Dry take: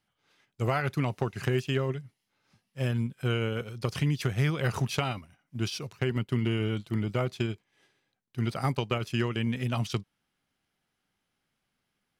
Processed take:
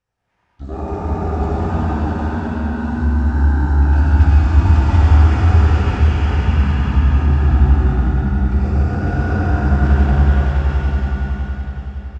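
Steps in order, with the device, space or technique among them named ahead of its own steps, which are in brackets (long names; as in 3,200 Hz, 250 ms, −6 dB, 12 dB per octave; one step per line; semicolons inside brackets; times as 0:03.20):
0:00.62–0:01.91: bass and treble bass −7 dB, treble −2 dB
echo that builds up and dies away 93 ms, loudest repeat 5, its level −4 dB
monster voice (pitch shifter −9 semitones; formants moved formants −2 semitones; low-shelf EQ 110 Hz +6 dB; single-tap delay 79 ms −8 dB; convolution reverb RT60 1.6 s, pre-delay 96 ms, DRR −2 dB)
dense smooth reverb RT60 2.4 s, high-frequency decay 0.8×, DRR −3 dB
level −4.5 dB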